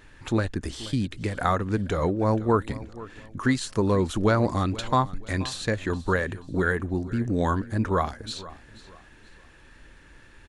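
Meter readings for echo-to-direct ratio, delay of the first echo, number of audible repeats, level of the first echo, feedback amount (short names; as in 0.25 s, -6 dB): -17.5 dB, 0.48 s, 2, -18.0 dB, 33%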